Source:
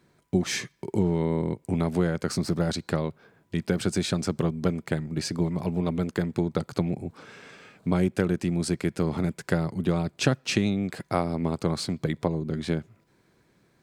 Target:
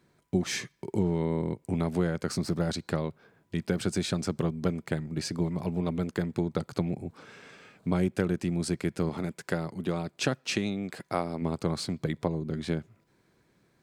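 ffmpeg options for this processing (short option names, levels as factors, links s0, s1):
-filter_complex "[0:a]asettb=1/sr,asplit=3[s0][s1][s2];[s0]atrim=end=9.094[s3];[s1]atrim=start=9.09:end=11.42,asetpts=PTS-STARTPTS,afade=t=in:d=0.004:c=qsin,afade=t=out:st=2.326:d=0.004:c=qsin,lowshelf=f=140:g=-10[s4];[s2]atrim=start=11.416[s5];[s3][s4]acrossfade=d=0.004:c1=hsin:c2=qsin[s6];[s6][s5]acrossfade=d=0.004:c1=qsin:c2=hsin,volume=0.708"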